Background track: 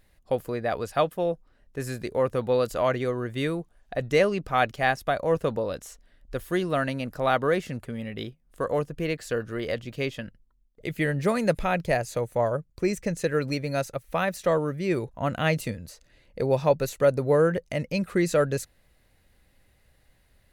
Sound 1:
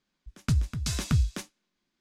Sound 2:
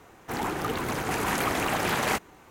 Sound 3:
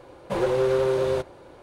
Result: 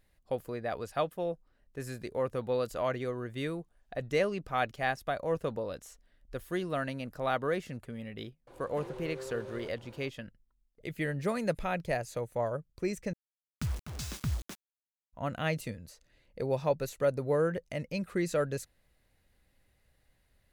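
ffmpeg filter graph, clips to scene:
-filter_complex "[0:a]volume=0.422[s0];[3:a]acompressor=threshold=0.0251:ratio=8:attack=0.37:release=429:knee=1:detection=peak[s1];[1:a]acrusher=bits=5:mix=0:aa=0.000001[s2];[s0]asplit=2[s3][s4];[s3]atrim=end=13.134[s5];[s2]atrim=end=2,asetpts=PTS-STARTPTS,volume=0.355[s6];[s4]atrim=start=15.126[s7];[s1]atrim=end=1.62,asetpts=PTS-STARTPTS,volume=0.447,afade=t=in:d=0.004:c=hsin,afade=t=out:st=1.616:d=0.004:c=hsin,adelay=8470[s8];[s5][s6]acrossfade=d=0.004:c1=hsin:c2=hsin[s9];[s9][s7]acrossfade=d=0.004:c1=hsin:c2=hsin[s10];[s10][s8]amix=inputs=2:normalize=0"

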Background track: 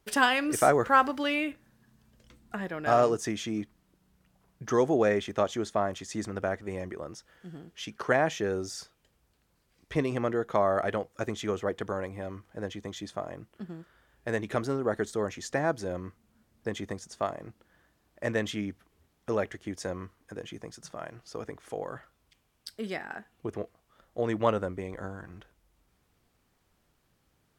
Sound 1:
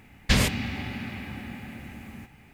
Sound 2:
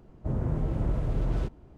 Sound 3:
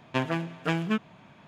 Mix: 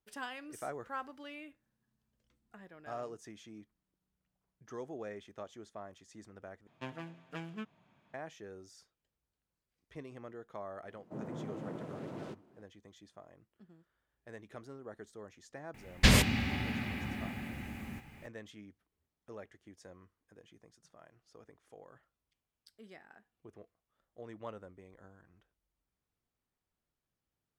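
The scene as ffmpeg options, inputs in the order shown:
-filter_complex "[0:a]volume=0.112[s0];[2:a]highpass=f=180:w=0.5412,highpass=f=180:w=1.3066[s1];[s0]asplit=2[s2][s3];[s2]atrim=end=6.674[s4];[3:a]atrim=end=1.47,asetpts=PTS-STARTPTS,volume=0.158[s5];[s3]atrim=start=8.136[s6];[s1]atrim=end=1.77,asetpts=PTS-STARTPTS,volume=0.473,afade=t=in:d=0.004:c=hsin,afade=t=out:st=1.766:d=0.004:c=hsin,adelay=10860[s7];[1:a]atrim=end=2.53,asetpts=PTS-STARTPTS,volume=0.841,afade=t=in:d=0.004:c=hsin,afade=t=out:st=2.526:d=0.004:c=hsin,adelay=15740[s8];[s4][s5]acrossfade=d=0.004:c1=hsin:c2=hsin[s9];[s9][s6]acrossfade=d=0.004:c1=hsin:c2=hsin[s10];[s10][s7][s8]amix=inputs=3:normalize=0"

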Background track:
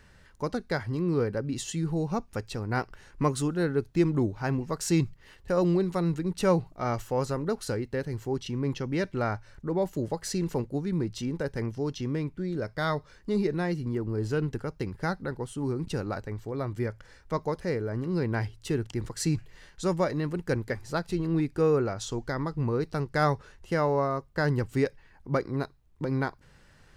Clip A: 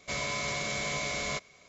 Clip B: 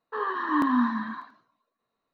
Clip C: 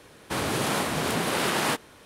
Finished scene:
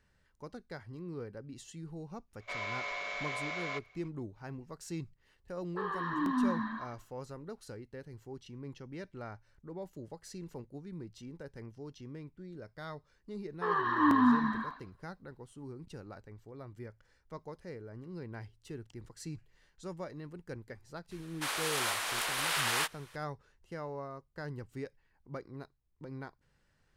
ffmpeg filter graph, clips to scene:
-filter_complex "[2:a]asplit=2[s0][s1];[0:a]volume=0.168[s2];[1:a]highpass=680,lowpass=2500[s3];[s0]acrossover=split=290|3000[s4][s5][s6];[s5]acompressor=threshold=0.0398:ratio=6:attack=3.2:release=140:knee=2.83:detection=peak[s7];[s4][s7][s6]amix=inputs=3:normalize=0[s8];[3:a]highpass=1100[s9];[s3]atrim=end=1.68,asetpts=PTS-STARTPTS,volume=0.841,afade=t=in:d=0.004:c=hsin,afade=t=out:st=1.676:d=0.004:c=hsin,adelay=2400[s10];[s8]atrim=end=2.13,asetpts=PTS-STARTPTS,volume=0.562,afade=t=in:d=0.004:c=hsin,afade=t=out:st=2.126:d=0.004:c=hsin,adelay=5640[s11];[s1]atrim=end=2.13,asetpts=PTS-STARTPTS,volume=0.841,afade=t=in:d=0.004:c=hsin,afade=t=out:st=2.126:d=0.004:c=hsin,adelay=13490[s12];[s9]atrim=end=2.05,asetpts=PTS-STARTPTS,volume=0.708,afade=t=in:d=0.004:c=hsin,afade=t=out:st=2.046:d=0.004:c=hsin,adelay=21110[s13];[s2][s10][s11][s12][s13]amix=inputs=5:normalize=0"

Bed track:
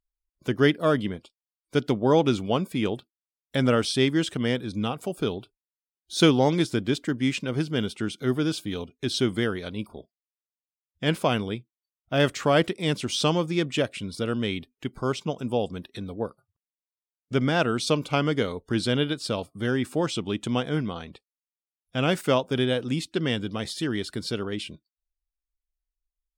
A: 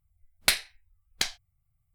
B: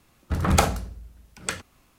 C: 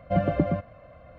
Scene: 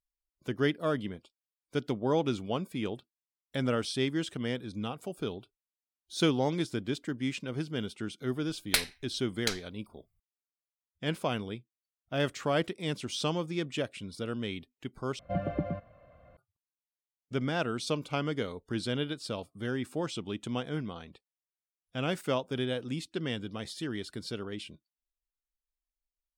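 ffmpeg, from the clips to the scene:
-filter_complex "[0:a]volume=0.398,asplit=2[s0][s1];[s0]atrim=end=15.194[s2];[3:a]atrim=end=1.18,asetpts=PTS-STARTPTS,volume=0.376[s3];[s1]atrim=start=16.366[s4];[1:a]atrim=end=1.94,asetpts=PTS-STARTPTS,volume=0.631,afade=t=in:d=0.004:c=hsin,afade=t=out:st=1.936:d=0.004:c=hsin,adelay=364266S[s5];[s2][s3]acrossfade=d=0.004:c1=hsin:c2=hsin[s6];[s6][s4]acrossfade=d=0.004:c1=hsin:c2=hsin[s7];[s7][s5]amix=inputs=2:normalize=0"

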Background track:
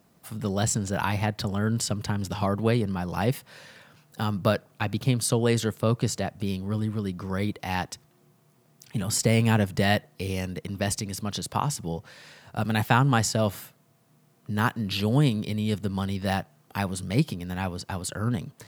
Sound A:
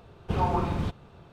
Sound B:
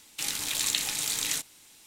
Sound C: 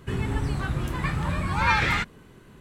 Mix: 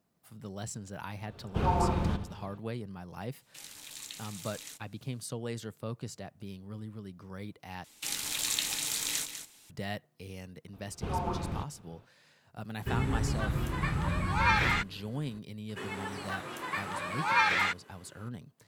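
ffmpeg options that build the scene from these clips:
-filter_complex "[1:a]asplit=2[s0][s1];[2:a]asplit=2[s2][s3];[3:a]asplit=2[s4][s5];[0:a]volume=0.188[s6];[s0]asplit=2[s7][s8];[s8]adelay=82,lowpass=f=3800:p=1,volume=0.316,asplit=2[s9][s10];[s10]adelay=82,lowpass=f=3800:p=1,volume=0.42,asplit=2[s11][s12];[s12]adelay=82,lowpass=f=3800:p=1,volume=0.42,asplit=2[s13][s14];[s14]adelay=82,lowpass=f=3800:p=1,volume=0.42[s15];[s7][s9][s11][s13][s15]amix=inputs=5:normalize=0[s16];[s3]aecho=1:1:198:0.335[s17];[s5]highpass=450[s18];[s6]asplit=2[s19][s20];[s19]atrim=end=7.844[s21];[s17]atrim=end=1.86,asetpts=PTS-STARTPTS,volume=0.668[s22];[s20]atrim=start=9.696[s23];[s16]atrim=end=1.32,asetpts=PTS-STARTPTS,volume=0.794,afade=t=in:d=0.004:c=hsin,afade=t=out:st=1.316:d=0.004:c=hsin,adelay=1260[s24];[s2]atrim=end=1.86,asetpts=PTS-STARTPTS,volume=0.15,afade=t=in:d=0.004:c=hsin,afade=t=out:st=1.856:d=0.004:c=hsin,adelay=3360[s25];[s1]atrim=end=1.32,asetpts=PTS-STARTPTS,volume=0.447,afade=t=in:d=0.004:c=hsin,afade=t=out:st=1.316:d=0.004:c=hsin,adelay=10730[s26];[s4]atrim=end=2.6,asetpts=PTS-STARTPTS,volume=0.631,afade=t=in:d=0.004:c=hsin,afade=t=out:st=2.596:d=0.004:c=hsin,adelay=12790[s27];[s18]atrim=end=2.6,asetpts=PTS-STARTPTS,volume=0.708,afade=t=in:d=0.004:c=hsin,afade=t=out:st=2.596:d=0.004:c=hsin,adelay=15690[s28];[s21][s22]acrossfade=d=0.004:c1=hsin:c2=hsin[s29];[s29][s23]acrossfade=d=0.004:c1=hsin:c2=hsin[s30];[s30][s24][s25][s26][s27][s28]amix=inputs=6:normalize=0"

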